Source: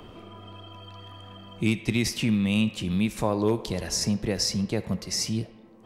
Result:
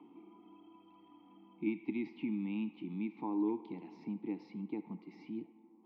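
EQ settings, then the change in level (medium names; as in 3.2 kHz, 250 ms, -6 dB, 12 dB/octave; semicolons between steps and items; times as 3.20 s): vowel filter u; Chebyshev band-pass 160–4000 Hz, order 3; treble shelf 2.1 kHz -10 dB; +1.0 dB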